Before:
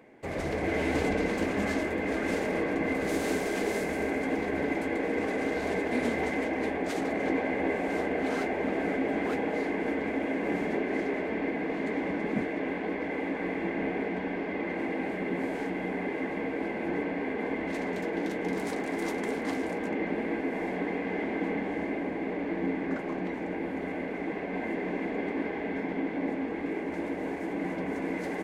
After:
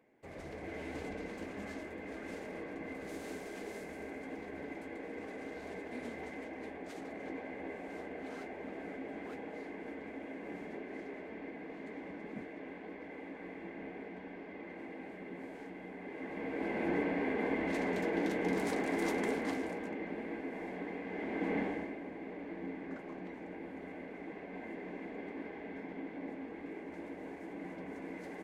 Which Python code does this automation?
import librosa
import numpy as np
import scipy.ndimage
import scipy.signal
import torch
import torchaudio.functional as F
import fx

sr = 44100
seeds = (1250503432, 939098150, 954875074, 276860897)

y = fx.gain(x, sr, db=fx.line((15.99, -14.5), (16.79, -2.0), (19.25, -2.0), (19.98, -10.0), (21.08, -10.0), (21.61, -2.0), (21.96, -12.0)))